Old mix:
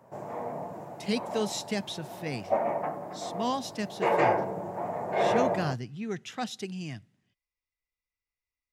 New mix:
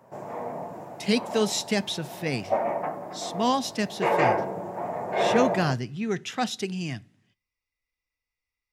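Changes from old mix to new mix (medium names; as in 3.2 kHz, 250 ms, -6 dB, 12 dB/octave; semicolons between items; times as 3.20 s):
speech +5.0 dB; reverb: on, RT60 0.40 s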